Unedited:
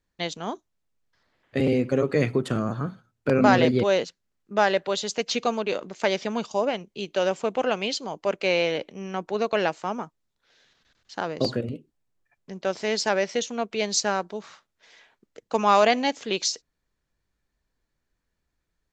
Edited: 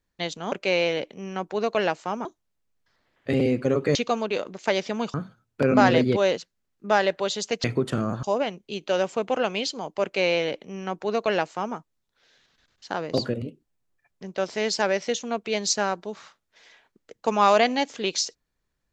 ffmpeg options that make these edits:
-filter_complex "[0:a]asplit=7[s0][s1][s2][s3][s4][s5][s6];[s0]atrim=end=0.522[s7];[s1]atrim=start=8.298:end=10.032[s8];[s2]atrim=start=0.518:end=2.222[s9];[s3]atrim=start=5.308:end=6.502[s10];[s4]atrim=start=2.808:end=5.312[s11];[s5]atrim=start=2.218:end=2.812[s12];[s6]atrim=start=6.498[s13];[s7][s8]acrossfade=d=0.004:c1=hsin:c2=hsin[s14];[s14][s9]acrossfade=d=0.004:c1=hsin:c2=hsin[s15];[s15][s10]acrossfade=d=0.004:c1=hsin:c2=hsin[s16];[s16][s11]acrossfade=d=0.004:c1=hsin:c2=hsin[s17];[s17][s12]acrossfade=d=0.004:c1=hsin:c2=hsin[s18];[s18][s13]acrossfade=d=0.004:c1=hsin:c2=hsin"

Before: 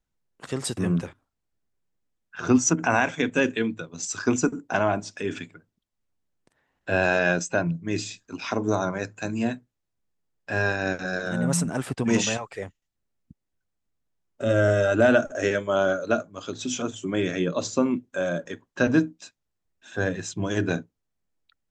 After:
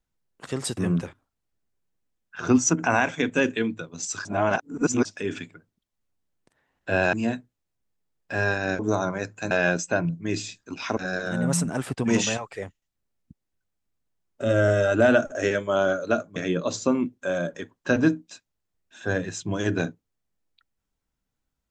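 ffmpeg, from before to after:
-filter_complex "[0:a]asplit=8[s0][s1][s2][s3][s4][s5][s6][s7];[s0]atrim=end=4.252[s8];[s1]atrim=start=4.248:end=5.052,asetpts=PTS-STARTPTS,areverse[s9];[s2]atrim=start=5.048:end=7.132[s10];[s3]atrim=start=9.308:end=10.972[s11];[s4]atrim=start=8.588:end=9.312[s12];[s5]atrim=start=7.128:end=8.592[s13];[s6]atrim=start=10.968:end=16.362[s14];[s7]atrim=start=17.268[s15];[s8][s9]acrossfade=d=0.004:c1=hsin:c2=hsin[s16];[s16][s10]acrossfade=d=0.004:c1=hsin:c2=hsin[s17];[s17][s11]acrossfade=d=0.004:c1=hsin:c2=hsin[s18];[s18][s12]acrossfade=d=0.004:c1=hsin:c2=hsin[s19];[s19][s13]acrossfade=d=0.004:c1=hsin:c2=hsin[s20];[s20][s14]acrossfade=d=0.004:c1=hsin:c2=hsin[s21];[s21][s15]acrossfade=d=0.004:c1=hsin:c2=hsin"

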